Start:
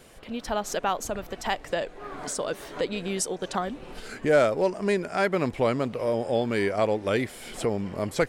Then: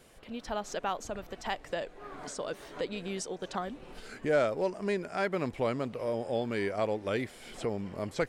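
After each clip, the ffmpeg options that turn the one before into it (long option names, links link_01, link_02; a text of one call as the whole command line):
ffmpeg -i in.wav -filter_complex "[0:a]acrossover=split=7600[link_01][link_02];[link_02]acompressor=threshold=-54dB:ratio=4:attack=1:release=60[link_03];[link_01][link_03]amix=inputs=2:normalize=0,volume=-6.5dB" out.wav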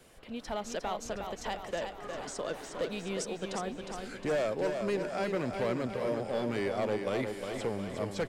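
ffmpeg -i in.wav -filter_complex "[0:a]acrossover=split=160|810|3100[link_01][link_02][link_03][link_04];[link_03]alimiter=level_in=7.5dB:limit=-24dB:level=0:latency=1,volume=-7.5dB[link_05];[link_01][link_02][link_05][link_04]amix=inputs=4:normalize=0,asoftclip=type=hard:threshold=-26.5dB,aecho=1:1:359|718|1077|1436|1795|2154|2513:0.501|0.281|0.157|0.088|0.0493|0.0276|0.0155" out.wav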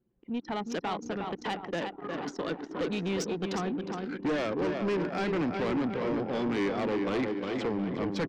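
ffmpeg -i in.wav -af "highpass=130,equalizer=frequency=170:width_type=q:width=4:gain=6,equalizer=frequency=300:width_type=q:width=4:gain=9,equalizer=frequency=610:width_type=q:width=4:gain=-9,lowpass=frequency=6100:width=0.5412,lowpass=frequency=6100:width=1.3066,anlmdn=0.251,asoftclip=type=tanh:threshold=-31.5dB,volume=6.5dB" out.wav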